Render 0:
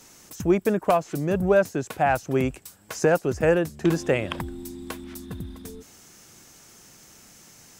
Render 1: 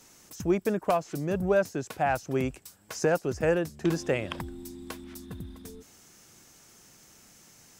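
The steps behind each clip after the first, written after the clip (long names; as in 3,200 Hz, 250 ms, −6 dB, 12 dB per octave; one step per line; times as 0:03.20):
dynamic equaliser 5,200 Hz, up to +4 dB, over −51 dBFS, Q 2
level −5 dB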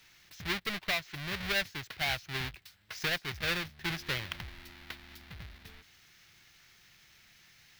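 each half-wave held at its own peak
graphic EQ with 10 bands 250 Hz −11 dB, 500 Hz −9 dB, 1,000 Hz −5 dB, 2,000 Hz +8 dB, 4,000 Hz +8 dB, 8,000 Hz −10 dB
level −9 dB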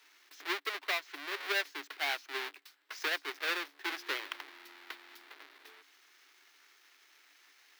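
in parallel at −10 dB: log-companded quantiser 4 bits
on the sum: Chebyshev high-pass with heavy ripple 280 Hz, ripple 6 dB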